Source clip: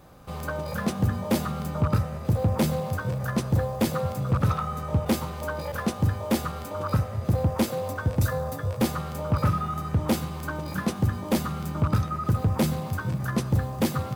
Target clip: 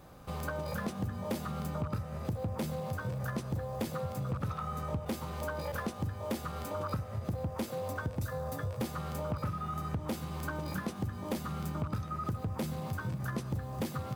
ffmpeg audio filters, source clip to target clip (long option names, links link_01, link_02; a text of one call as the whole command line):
ffmpeg -i in.wav -af "acompressor=threshold=-30dB:ratio=6,volume=-2.5dB" out.wav